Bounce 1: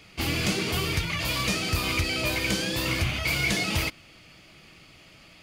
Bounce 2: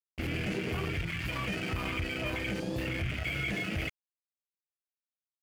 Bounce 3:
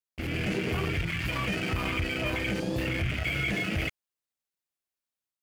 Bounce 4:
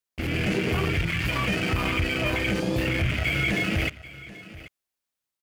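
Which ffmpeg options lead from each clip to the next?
ffmpeg -i in.wav -af "afwtdn=0.0355,aeval=exprs='sgn(val(0))*max(abs(val(0))-0.00631,0)':channel_layout=same,alimiter=level_in=0.5dB:limit=-24dB:level=0:latency=1:release=24,volume=-0.5dB" out.wav
ffmpeg -i in.wav -af "dynaudnorm=framelen=220:gausssize=3:maxgain=4dB" out.wav
ffmpeg -i in.wav -af "aecho=1:1:785:0.133,volume=4.5dB" out.wav

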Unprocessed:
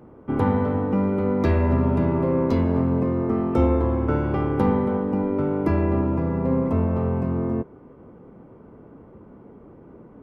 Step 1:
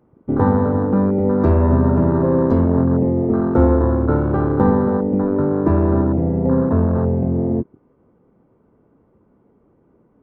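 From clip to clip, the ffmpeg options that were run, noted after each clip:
ffmpeg -i in.wav -af "afwtdn=0.0447,volume=5.5dB" out.wav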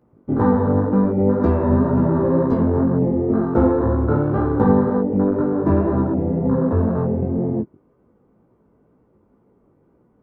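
ffmpeg -i in.wav -af "flanger=delay=16:depth=4.6:speed=2,volume=1.5dB" out.wav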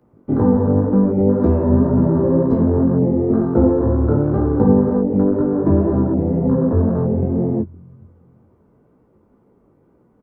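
ffmpeg -i in.wav -filter_complex "[0:a]acrossover=split=150|700[link_01][link_02][link_03];[link_01]aecho=1:1:422|844|1266:0.168|0.0487|0.0141[link_04];[link_03]acompressor=threshold=-39dB:ratio=6[link_05];[link_04][link_02][link_05]amix=inputs=3:normalize=0,volume=2.5dB" out.wav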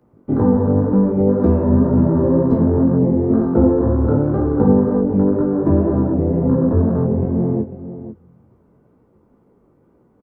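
ffmpeg -i in.wav -af "aecho=1:1:496:0.237" out.wav

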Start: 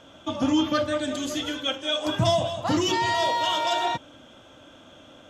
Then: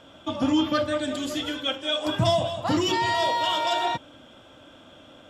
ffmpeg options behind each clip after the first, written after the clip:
ffmpeg -i in.wav -af "bandreject=frequency=6300:width=7.2" out.wav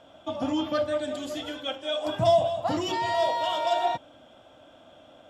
ffmpeg -i in.wav -af "equalizer=frequency=690:width=2.4:gain=10,volume=-6.5dB" out.wav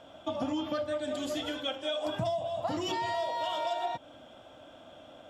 ffmpeg -i in.wav -af "acompressor=threshold=-30dB:ratio=10,volume=1dB" out.wav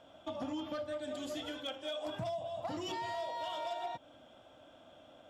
ffmpeg -i in.wav -af "volume=26dB,asoftclip=hard,volume=-26dB,volume=-6.5dB" out.wav

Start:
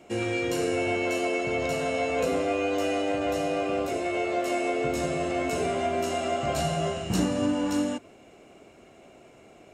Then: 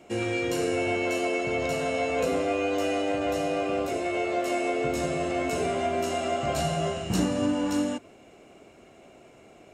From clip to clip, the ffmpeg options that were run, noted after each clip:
ffmpeg -i in.wav -af anull out.wav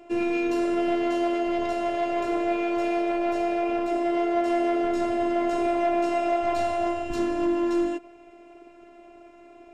ffmpeg -i in.wav -af "volume=23.5dB,asoftclip=hard,volume=-23.5dB,afftfilt=real='hypot(re,im)*cos(PI*b)':imag='0':win_size=512:overlap=0.75,aemphasis=mode=reproduction:type=75fm,volume=5.5dB" out.wav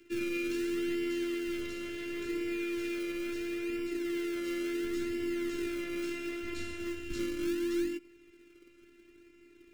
ffmpeg -i in.wav -filter_complex "[0:a]acrossover=split=280|350|2200[link_01][link_02][link_03][link_04];[link_01]acrusher=samples=34:mix=1:aa=0.000001:lfo=1:lforange=34:lforate=0.72[link_05];[link_05][link_02][link_03][link_04]amix=inputs=4:normalize=0,asuperstop=centerf=780:order=4:qfactor=0.59,volume=-4.5dB" out.wav

